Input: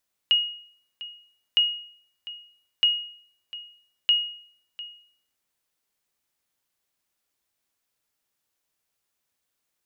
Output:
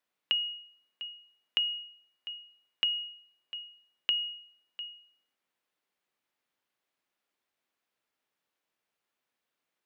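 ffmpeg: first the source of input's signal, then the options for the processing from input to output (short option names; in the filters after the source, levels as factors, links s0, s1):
-f lavfi -i "aevalsrc='0.224*(sin(2*PI*2880*mod(t,1.26))*exp(-6.91*mod(t,1.26)/0.57)+0.133*sin(2*PI*2880*max(mod(t,1.26)-0.7,0))*exp(-6.91*max(mod(t,1.26)-0.7,0)/0.57))':d=5.04:s=44100"
-filter_complex "[0:a]acompressor=threshold=0.0631:ratio=6,acrossover=split=160 3700:gain=0.2 1 0.251[s0][s1][s2];[s0][s1][s2]amix=inputs=3:normalize=0"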